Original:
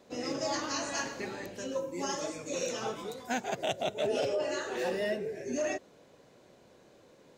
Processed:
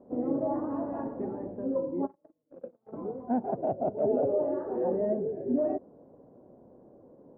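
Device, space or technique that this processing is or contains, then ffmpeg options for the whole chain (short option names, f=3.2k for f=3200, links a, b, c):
under water: -filter_complex "[0:a]lowpass=f=850:w=0.5412,lowpass=f=850:w=1.3066,equalizer=f=260:t=o:w=0.59:g=6,asplit=3[a][b][c];[a]afade=t=out:st=2.05:d=0.02[d];[b]agate=range=-43dB:threshold=-30dB:ratio=16:detection=peak,afade=t=in:st=2.05:d=0.02,afade=t=out:st=2.92:d=0.02[e];[c]afade=t=in:st=2.92:d=0.02[f];[d][e][f]amix=inputs=3:normalize=0,volume=3.5dB"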